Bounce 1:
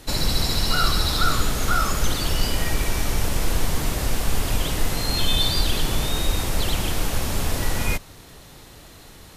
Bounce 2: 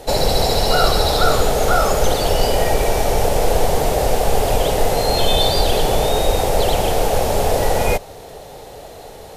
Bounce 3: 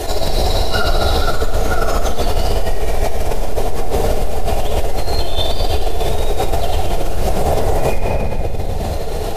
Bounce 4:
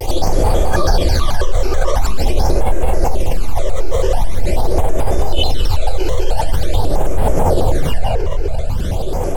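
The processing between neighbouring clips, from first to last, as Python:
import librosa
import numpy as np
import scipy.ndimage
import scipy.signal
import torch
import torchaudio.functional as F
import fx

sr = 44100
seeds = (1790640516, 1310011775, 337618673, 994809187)

y1 = fx.band_shelf(x, sr, hz=590.0, db=14.0, octaves=1.3)
y1 = y1 * 10.0 ** (3.0 / 20.0)
y2 = fx.chorus_voices(y1, sr, voices=6, hz=1.1, base_ms=12, depth_ms=3.0, mix_pct=55)
y2 = fx.room_shoebox(y2, sr, seeds[0], volume_m3=3100.0, walls='mixed', distance_m=3.2)
y2 = fx.env_flatten(y2, sr, amount_pct=70)
y2 = y2 * 10.0 ** (-13.0 / 20.0)
y3 = fx.phaser_stages(y2, sr, stages=12, low_hz=220.0, high_hz=5000.0, hz=0.45, feedback_pct=25)
y3 = fx.vibrato_shape(y3, sr, shape='square', rate_hz=4.6, depth_cents=250.0)
y3 = y3 * 10.0 ** (1.5 / 20.0)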